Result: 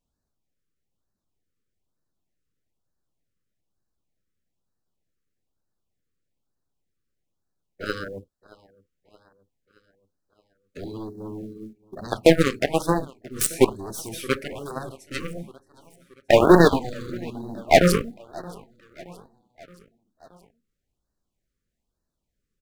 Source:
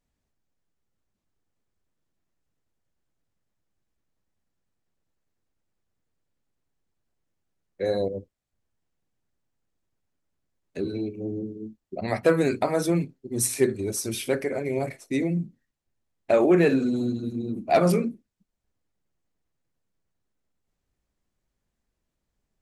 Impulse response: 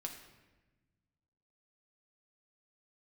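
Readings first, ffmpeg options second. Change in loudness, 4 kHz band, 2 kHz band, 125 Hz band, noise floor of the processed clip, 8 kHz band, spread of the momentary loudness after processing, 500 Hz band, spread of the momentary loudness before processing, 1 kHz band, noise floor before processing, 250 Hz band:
+4.0 dB, +8.0 dB, +6.0 dB, +2.0 dB, -81 dBFS, +0.5 dB, 21 LU, +3.0 dB, 13 LU, +6.0 dB, -81 dBFS, +1.0 dB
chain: -filter_complex "[0:a]aeval=exprs='0.422*(cos(1*acos(clip(val(0)/0.422,-1,1)))-cos(1*PI/2))+0.0266*(cos(2*acos(clip(val(0)/0.422,-1,1)))-cos(2*PI/2))+0.00596*(cos(3*acos(clip(val(0)/0.422,-1,1)))-cos(3*PI/2))+0.0168*(cos(6*acos(clip(val(0)/0.422,-1,1)))-cos(6*PI/2))+0.0841*(cos(7*acos(clip(val(0)/0.422,-1,1)))-cos(7*PI/2))':c=same,asplit=2[s0][s1];[s1]aecho=0:1:623|1246|1869|2492:0.0708|0.0425|0.0255|0.0153[s2];[s0][s2]amix=inputs=2:normalize=0,acrusher=bits=8:mode=log:mix=0:aa=0.000001,afftfilt=real='re*(1-between(b*sr/1024,760*pow(2700/760,0.5+0.5*sin(2*PI*1.1*pts/sr))/1.41,760*pow(2700/760,0.5+0.5*sin(2*PI*1.1*pts/sr))*1.41))':imag='im*(1-between(b*sr/1024,760*pow(2700/760,0.5+0.5*sin(2*PI*1.1*pts/sr))/1.41,760*pow(2700/760,0.5+0.5*sin(2*PI*1.1*pts/sr))*1.41))':win_size=1024:overlap=0.75,volume=1.88"

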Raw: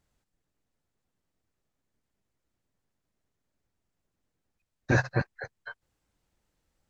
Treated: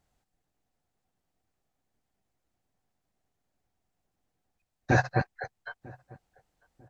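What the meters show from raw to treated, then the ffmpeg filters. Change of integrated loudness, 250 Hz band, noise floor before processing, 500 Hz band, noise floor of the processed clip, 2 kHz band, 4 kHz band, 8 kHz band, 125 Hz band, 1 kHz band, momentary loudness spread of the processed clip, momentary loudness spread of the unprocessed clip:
0.0 dB, 0.0 dB, -83 dBFS, +1.0 dB, -82 dBFS, 0.0 dB, 0.0 dB, no reading, 0.0 dB, +6.5 dB, 20 LU, 20 LU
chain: -filter_complex "[0:a]equalizer=f=750:t=o:w=0.3:g=9.5,asplit=2[s0][s1];[s1]adelay=947,lowpass=f=870:p=1,volume=0.075,asplit=2[s2][s3];[s3]adelay=947,lowpass=f=870:p=1,volume=0.33[s4];[s2][s4]amix=inputs=2:normalize=0[s5];[s0][s5]amix=inputs=2:normalize=0"

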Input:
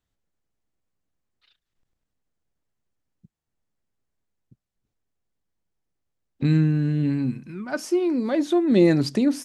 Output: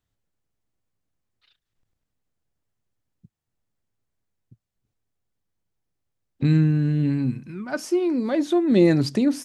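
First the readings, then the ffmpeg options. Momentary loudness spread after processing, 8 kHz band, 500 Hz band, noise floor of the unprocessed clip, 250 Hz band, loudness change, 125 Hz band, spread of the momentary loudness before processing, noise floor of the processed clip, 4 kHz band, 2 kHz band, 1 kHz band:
11 LU, no reading, 0.0 dB, -83 dBFS, +0.5 dB, +0.5 dB, +1.5 dB, 12 LU, -82 dBFS, 0.0 dB, 0.0 dB, 0.0 dB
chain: -af "equalizer=f=110:t=o:w=0.52:g=6"

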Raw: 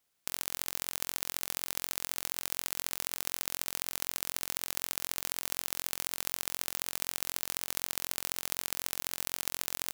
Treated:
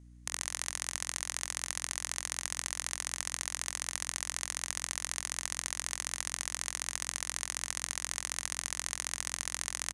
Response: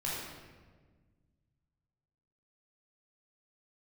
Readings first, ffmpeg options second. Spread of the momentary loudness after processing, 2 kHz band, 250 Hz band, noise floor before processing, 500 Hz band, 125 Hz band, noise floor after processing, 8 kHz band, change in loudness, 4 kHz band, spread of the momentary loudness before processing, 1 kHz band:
1 LU, +2.5 dB, -5.0 dB, -78 dBFS, -4.5 dB, +2.0 dB, -54 dBFS, +3.5 dB, -1.0 dB, -0.5 dB, 1 LU, +0.5 dB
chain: -af "highpass=f=400:w=0.5412,highpass=f=400:w=1.3066,equalizer=f=410:t=q:w=4:g=-8,equalizer=f=1100:t=q:w=4:g=4,equalizer=f=1900:t=q:w=4:g=8,equalizer=f=6400:t=q:w=4:g=9,equalizer=f=9400:t=q:w=4:g=9,lowpass=f=9800:w=0.5412,lowpass=f=9800:w=1.3066,aecho=1:1:143:0.0668,aeval=exprs='val(0)+0.00282*(sin(2*PI*60*n/s)+sin(2*PI*2*60*n/s)/2+sin(2*PI*3*60*n/s)/3+sin(2*PI*4*60*n/s)/4+sin(2*PI*5*60*n/s)/5)':c=same,volume=0.794"

